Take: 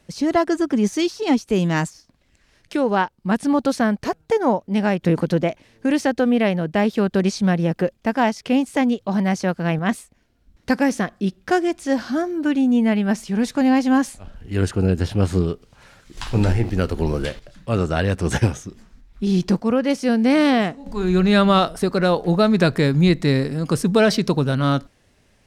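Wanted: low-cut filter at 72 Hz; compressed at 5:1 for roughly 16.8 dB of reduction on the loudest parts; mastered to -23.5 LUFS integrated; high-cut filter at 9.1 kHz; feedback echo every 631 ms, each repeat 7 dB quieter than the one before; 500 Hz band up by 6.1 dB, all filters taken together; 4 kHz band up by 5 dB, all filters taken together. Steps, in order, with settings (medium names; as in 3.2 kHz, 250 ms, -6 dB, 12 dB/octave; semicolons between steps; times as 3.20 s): high-pass 72 Hz; low-pass 9.1 kHz; peaking EQ 500 Hz +7.5 dB; peaking EQ 4 kHz +6 dB; compression 5:1, threshold -27 dBFS; feedback delay 631 ms, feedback 45%, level -7 dB; trim +6 dB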